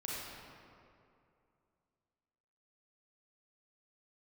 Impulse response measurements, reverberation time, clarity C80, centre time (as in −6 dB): 2.6 s, −1.5 dB, 149 ms